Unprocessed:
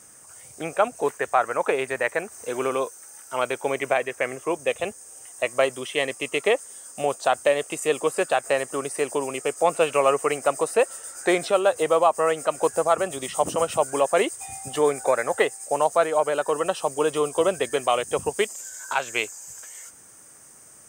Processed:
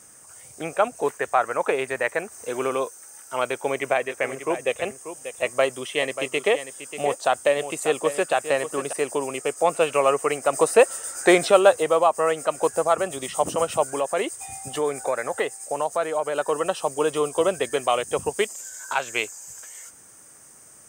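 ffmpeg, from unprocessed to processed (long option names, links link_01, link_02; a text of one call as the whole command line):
ffmpeg -i in.wav -filter_complex "[0:a]asettb=1/sr,asplit=3[link_01][link_02][link_03];[link_01]atrim=end=3.474[link_04];[link_02]atrim=start=3.47:end=8.93,asetpts=PTS-STARTPTS,afade=type=in:duration=0.004:curve=qsin,afade=type=out:start_time=5.456:duration=0.004:curve=qsin,aecho=1:1:588:0.282,atrim=end_sample=240786[link_05];[link_03]atrim=start=8.926[link_06];[link_04][link_05]acrossfade=duration=0.004:curve1=hsin:curve2=qsin[link_07];[link_07][link_06]acrossfade=duration=0.004:curve1=qsin:curve2=hsin,asettb=1/sr,asplit=3[link_08][link_09][link_10];[link_08]atrim=end=13.924[link_11];[link_09]atrim=start=13.92:end=16.36,asetpts=PTS-STARTPTS,afade=type=in:duration=0.004:curve=qsin,afade=type=out:start_time=2.436:duration=0.004:curve=qsin,acompressor=threshold=-26dB:ratio=1.5:attack=3.2:release=140:knee=1:detection=peak[link_12];[link_10]atrim=start=16.356[link_13];[link_11][link_12]acrossfade=duration=0.004:curve1=hsin:curve2=qsin[link_14];[link_14][link_13]acrossfade=duration=0.004:curve1=qsin:curve2=hsin,asplit=3[link_15][link_16][link_17];[link_15]atrim=end=10.532[link_18];[link_16]atrim=start=10.528:end=11.762,asetpts=PTS-STARTPTS,volume=5dB[link_19];[link_17]atrim=start=11.758[link_20];[link_18][link_19]acrossfade=duration=0.004:curve1=hsin:curve2=hsin[link_21];[link_21][link_20]acrossfade=duration=0.004:curve1=hsin:curve2=hsin" out.wav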